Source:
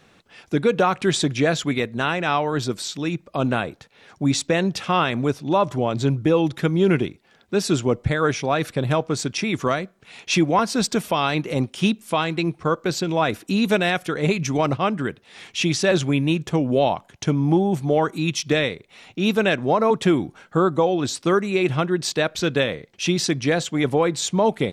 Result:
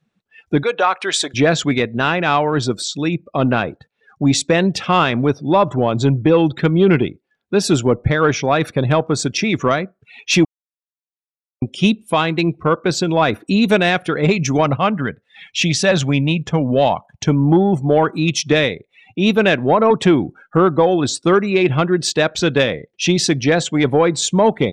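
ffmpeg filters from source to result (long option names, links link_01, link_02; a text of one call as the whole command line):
ffmpeg -i in.wav -filter_complex "[0:a]asettb=1/sr,asplit=3[link_01][link_02][link_03];[link_01]atrim=end=0.634[link_04];[link_02]atrim=start=0.63:end=1.34,asetpts=PTS-STARTPTS,afade=type=in:duration=0.004:curve=qsin,afade=type=out:start_time=0.706:duration=0.004:curve=qsin,highpass=630[link_05];[link_03]atrim=start=1.336[link_06];[link_04][link_05]acrossfade=duration=0.004:curve1=hsin:curve2=qsin[link_07];[link_07][link_06]acrossfade=duration=0.004:curve1=qsin:curve2=hsin,asettb=1/sr,asplit=3[link_08][link_09][link_10];[link_08]atrim=end=14.644[link_11];[link_09]atrim=start=14.64:end=17.25,asetpts=PTS-STARTPTS,afade=type=in:duration=0.004:curve=qsin,afade=type=out:start_time=2.606:duration=0.004:curve=qsin,equalizer=frequency=350:width=3.3:gain=-9[link_12];[link_10]atrim=start=17.246[link_13];[link_11][link_12]acrossfade=duration=0.004:curve1=hsin:curve2=qsin[link_14];[link_14][link_13]acrossfade=duration=0.004:curve1=qsin:curve2=hsin,asplit=3[link_15][link_16][link_17];[link_15]atrim=end=10.45,asetpts=PTS-STARTPTS,afade=type=out:start_time=10.446:duration=0.004:curve=hsin[link_18];[link_16]atrim=start=10.45:end=11.62,asetpts=PTS-STARTPTS,volume=0[link_19];[link_17]atrim=start=11.62,asetpts=PTS-STARTPTS,afade=type=in:duration=0.004:curve=hsin[link_20];[link_18][link_19][link_20]concat=n=3:v=0:a=1,afftdn=noise_reduction=27:noise_floor=-40,acontrast=53" out.wav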